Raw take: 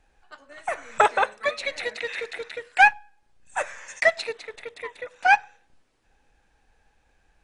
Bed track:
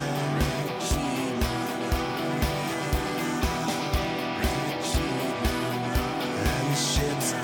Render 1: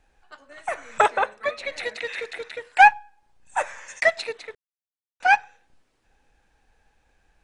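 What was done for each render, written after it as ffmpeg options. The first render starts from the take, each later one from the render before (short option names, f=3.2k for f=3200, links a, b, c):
-filter_complex "[0:a]asettb=1/sr,asplit=3[a][b][c];[a]atrim=end=1.104[d];[b]atrim=start=1.1:end=1.72,asetpts=PTS-STARTPTS,afade=t=in:d=0.004:c=qsin,afade=t=out:st=0.616:d=0.004:c=qsin,highshelf=f=3.1k:g=-7.5[e];[c]atrim=start=1.716[f];[d][e]acrossfade=d=0.004:c1=hsin:c2=qsin[g];[g][f]acrossfade=d=0.004:c1=qsin:c2=hsin,asettb=1/sr,asplit=3[h][i][j];[h]atrim=end=2.584[k];[i]atrim=start=2.58:end=3.81,asetpts=PTS-STARTPTS,afade=t=in:d=0.004:c=qsin,afade=t=out:st=1.226:d=0.004:c=qsin,equalizer=f=880:t=o:w=0.43:g=7[l];[j]atrim=start=3.806[m];[k][l]acrossfade=d=0.004:c1=hsin:c2=qsin[n];[n][m]acrossfade=d=0.004:c1=qsin:c2=hsin,asplit=3[o][p][q];[o]atrim=end=4.55,asetpts=PTS-STARTPTS,afade=t=out:st=4.546:d=0.004:c=hsin[r];[p]atrim=start=4.55:end=5.2,asetpts=PTS-STARTPTS,volume=0[s];[q]atrim=start=5.2,asetpts=PTS-STARTPTS,afade=t=in:d=0.004:c=hsin[t];[r][s][t]concat=n=3:v=0:a=1"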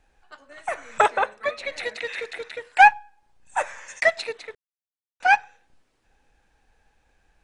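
-af anull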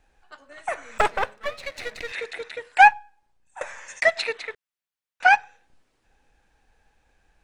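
-filter_complex "[0:a]asettb=1/sr,asplit=3[a][b][c];[a]atrim=end=0.984[d];[b]atrim=start=0.98:end=2.12,asetpts=PTS-STARTPTS,afade=t=in:d=0.004:c=qsin,afade=t=out:st=1.136:d=0.004:c=qsin,aeval=exprs='if(lt(val(0),0),0.251*val(0),val(0))':c=same[e];[c]atrim=start=2.116[f];[d][e]acrossfade=d=0.004:c1=hsin:c2=qsin[g];[g][f]acrossfade=d=0.004:c1=qsin:c2=hsin,asettb=1/sr,asplit=3[h][i][j];[h]atrim=end=4.164[k];[i]atrim=start=4.16:end=5.29,asetpts=PTS-STARTPTS,afade=t=in:d=0.004:c=qsin,afade=t=out:st=1.126:d=0.004:c=qsin,equalizer=f=1.9k:t=o:w=2.4:g=7.5[l];[j]atrim=start=5.286[m];[k][l]acrossfade=d=0.004:c1=hsin:c2=qsin[n];[n][m]acrossfade=d=0.004:c1=qsin:c2=hsin,asplit=2[o][p];[o]atrim=end=3.61,asetpts=PTS-STARTPTS,afade=t=out:st=2.93:d=0.68:silence=0.105925[q];[p]atrim=start=3.61,asetpts=PTS-STARTPTS,afade=t=in:d=0.004:c=hsin:silence=0.105925[r];[q][r]concat=n=2:v=0:a=1"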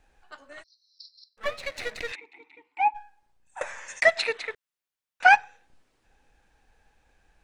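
-filter_complex "[0:a]asplit=3[a][b][c];[a]afade=t=out:st=0.62:d=0.02[d];[b]asuperpass=centerf=4700:order=12:qfactor=3.2,afade=t=in:st=0.62:d=0.02,afade=t=out:st=1.37:d=0.02[e];[c]afade=t=in:st=1.37:d=0.02[f];[d][e][f]amix=inputs=3:normalize=0,asplit=3[g][h][i];[g]afade=t=out:st=2.14:d=0.02[j];[h]asplit=3[k][l][m];[k]bandpass=f=300:t=q:w=8,volume=0dB[n];[l]bandpass=f=870:t=q:w=8,volume=-6dB[o];[m]bandpass=f=2.24k:t=q:w=8,volume=-9dB[p];[n][o][p]amix=inputs=3:normalize=0,afade=t=in:st=2.14:d=0.02,afade=t=out:st=2.94:d=0.02[q];[i]afade=t=in:st=2.94:d=0.02[r];[j][q][r]amix=inputs=3:normalize=0"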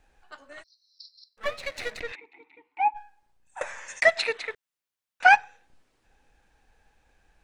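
-filter_complex "[0:a]asettb=1/sr,asplit=3[a][b][c];[a]atrim=end=2.004[d];[b]atrim=start=2:end=2.97,asetpts=PTS-STARTPTS,afade=t=in:d=0.004:c=qsin,afade=t=out:st=0.966:d=0.004:c=qsin,lowpass=f=2.3k:p=1[e];[c]atrim=start=2.966[f];[d][e]acrossfade=d=0.004:c1=hsin:c2=qsin[g];[g][f]acrossfade=d=0.004:c1=qsin:c2=hsin"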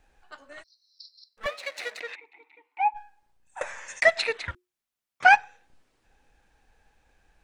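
-filter_complex "[0:a]asettb=1/sr,asplit=3[a][b][c];[a]atrim=end=1.464[d];[b]atrim=start=1.46:end=2.92,asetpts=PTS-STARTPTS,afade=t=in:d=0.004:c=qsin,afade=t=out:st=1.456:d=0.004:c=qsin,highpass=480[e];[c]atrim=start=2.916[f];[d][e]acrossfade=d=0.004:c1=hsin:c2=qsin[g];[g][f]acrossfade=d=0.004:c1=qsin:c2=hsin,asettb=1/sr,asplit=3[h][i][j];[h]atrim=end=4.464[k];[i]atrim=start=4.46:end=5.25,asetpts=PTS-STARTPTS,afade=t=in:d=0.004:c=qsin,afade=t=out:st=0.786:d=0.004:c=qsin,afreqshift=-360[l];[j]atrim=start=5.246[m];[k][l]acrossfade=d=0.004:c1=hsin:c2=qsin[n];[n][m]acrossfade=d=0.004:c1=qsin:c2=hsin"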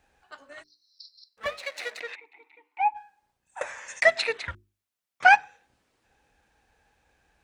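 -af "highpass=55,bandreject=f=50:t=h:w=6,bandreject=f=100:t=h:w=6,bandreject=f=150:t=h:w=6,bandreject=f=200:t=h:w=6,bandreject=f=250:t=h:w=6,bandreject=f=300:t=h:w=6,bandreject=f=350:t=h:w=6,bandreject=f=400:t=h:w=6"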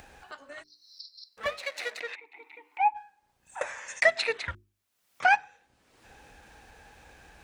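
-af "alimiter=limit=-11dB:level=0:latency=1:release=306,acompressor=mode=upward:threshold=-40dB:ratio=2.5"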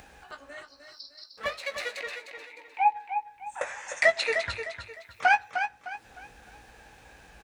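-filter_complex "[0:a]asplit=2[a][b];[b]adelay=18,volume=-8dB[c];[a][c]amix=inputs=2:normalize=0,aecho=1:1:305|610|915|1220:0.398|0.135|0.046|0.0156"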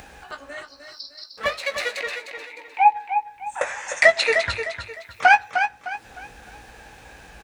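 -af "volume=7.5dB,alimiter=limit=-3dB:level=0:latency=1"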